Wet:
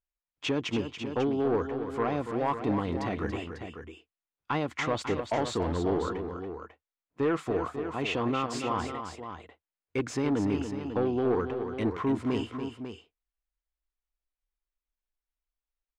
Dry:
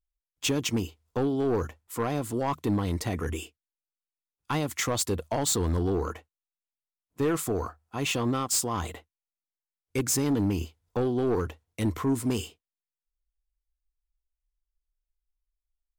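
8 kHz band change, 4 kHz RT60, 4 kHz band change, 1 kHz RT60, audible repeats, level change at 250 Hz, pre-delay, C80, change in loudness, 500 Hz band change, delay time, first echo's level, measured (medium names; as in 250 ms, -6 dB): -16.5 dB, no reverb, -4.5 dB, no reverb, 2, -1.0 dB, no reverb, no reverb, -2.0 dB, +0.5 dB, 284 ms, -8.5 dB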